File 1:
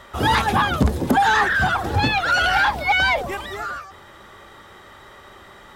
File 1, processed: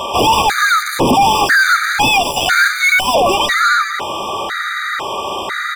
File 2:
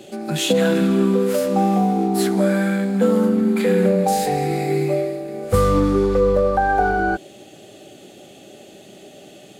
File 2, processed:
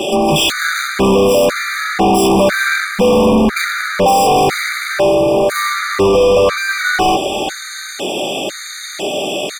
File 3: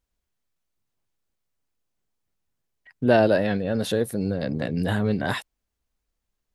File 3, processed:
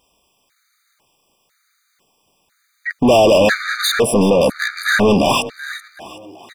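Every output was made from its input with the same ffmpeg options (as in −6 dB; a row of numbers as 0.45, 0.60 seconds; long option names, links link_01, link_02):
-filter_complex "[0:a]asplit=2[link_01][link_02];[link_02]highpass=frequency=720:poles=1,volume=36dB,asoftclip=type=tanh:threshold=-4dB[link_03];[link_01][link_03]amix=inputs=2:normalize=0,lowpass=frequency=6000:poles=1,volume=-6dB,asplit=6[link_04][link_05][link_06][link_07][link_08][link_09];[link_05]adelay=379,afreqshift=34,volume=-15dB[link_10];[link_06]adelay=758,afreqshift=68,volume=-21dB[link_11];[link_07]adelay=1137,afreqshift=102,volume=-27dB[link_12];[link_08]adelay=1516,afreqshift=136,volume=-33.1dB[link_13];[link_09]adelay=1895,afreqshift=170,volume=-39.1dB[link_14];[link_04][link_10][link_11][link_12][link_13][link_14]amix=inputs=6:normalize=0,afftfilt=real='re*gt(sin(2*PI*1*pts/sr)*(1-2*mod(floor(b*sr/1024/1200),2)),0)':imag='im*gt(sin(2*PI*1*pts/sr)*(1-2*mod(floor(b*sr/1024/1200),2)),0)':win_size=1024:overlap=0.75"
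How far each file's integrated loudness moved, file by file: +5.5, +5.0, +9.5 LU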